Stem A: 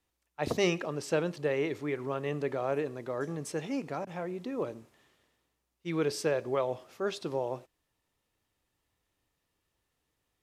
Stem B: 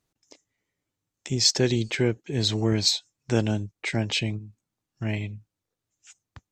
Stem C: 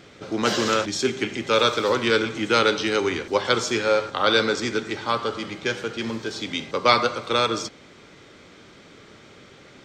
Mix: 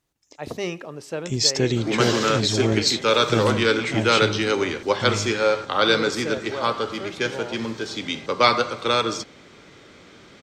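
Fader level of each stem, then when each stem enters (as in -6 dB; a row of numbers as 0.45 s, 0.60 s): -1.0 dB, +1.0 dB, +0.5 dB; 0.00 s, 0.00 s, 1.55 s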